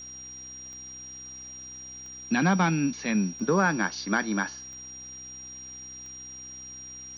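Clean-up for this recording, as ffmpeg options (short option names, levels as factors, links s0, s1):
-af "adeclick=t=4,bandreject=f=64.2:t=h:w=4,bandreject=f=128.4:t=h:w=4,bandreject=f=192.6:t=h:w=4,bandreject=f=256.8:t=h:w=4,bandreject=f=321:t=h:w=4,bandreject=f=5700:w=30,afwtdn=0.002"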